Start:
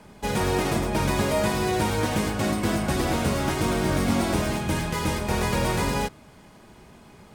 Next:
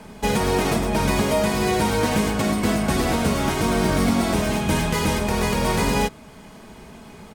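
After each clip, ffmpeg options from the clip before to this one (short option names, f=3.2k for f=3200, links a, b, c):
-af "aecho=1:1:4.5:0.33,alimiter=limit=-16.5dB:level=0:latency=1:release=461,volume=6.5dB"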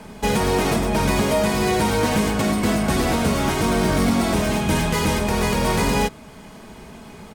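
-af "asoftclip=type=tanh:threshold=-11.5dB,volume=2dB"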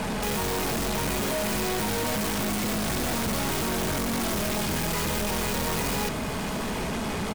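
-af "aeval=exprs='(tanh(31.6*val(0)+0.65)-tanh(0.65))/31.6':c=same,aeval=exprs='0.0501*sin(PI/2*5.01*val(0)/0.0501)':c=same,aecho=1:1:750:0.158"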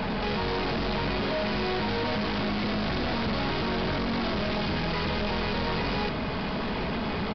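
-af "aresample=11025,aresample=44100"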